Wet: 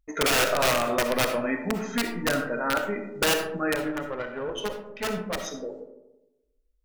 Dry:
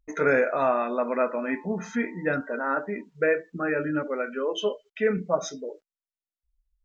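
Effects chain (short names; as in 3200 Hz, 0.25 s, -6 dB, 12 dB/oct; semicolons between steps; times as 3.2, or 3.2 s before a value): wrapped overs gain 17 dB; 3.75–5.47 tube stage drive 25 dB, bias 0.75; on a send at -6.5 dB: reverb RT60 1.0 s, pre-delay 20 ms; 0.67–1.35 on the sum: three-band squash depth 40%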